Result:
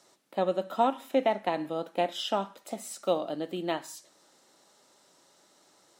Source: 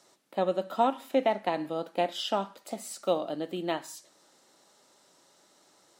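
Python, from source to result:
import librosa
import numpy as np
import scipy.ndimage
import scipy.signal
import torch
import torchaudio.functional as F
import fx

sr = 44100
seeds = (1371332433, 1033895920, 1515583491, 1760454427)

y = fx.notch(x, sr, hz=4600.0, q=11.0, at=(0.55, 3.04))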